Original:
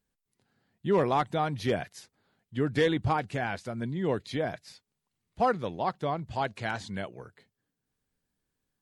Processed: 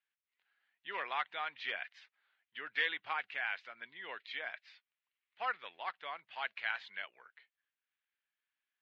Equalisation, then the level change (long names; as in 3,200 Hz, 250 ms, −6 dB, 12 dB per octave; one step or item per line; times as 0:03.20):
Chebyshev high-pass filter 2,100 Hz, order 2
low-pass filter 3,000 Hz 24 dB per octave
+3.0 dB